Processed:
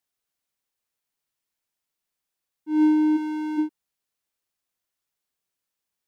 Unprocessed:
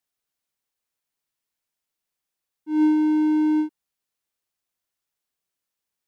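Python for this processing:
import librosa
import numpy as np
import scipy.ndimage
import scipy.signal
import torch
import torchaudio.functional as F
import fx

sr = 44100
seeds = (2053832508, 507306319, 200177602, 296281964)

y = fx.highpass(x, sr, hz=810.0, slope=6, at=(3.16, 3.57), fade=0.02)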